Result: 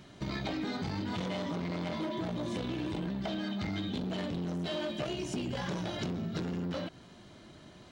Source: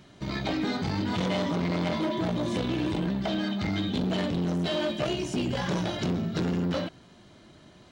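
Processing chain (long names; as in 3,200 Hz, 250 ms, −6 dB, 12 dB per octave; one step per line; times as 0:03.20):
downward compressor 4 to 1, threshold −33 dBFS, peak gain reduction 8.5 dB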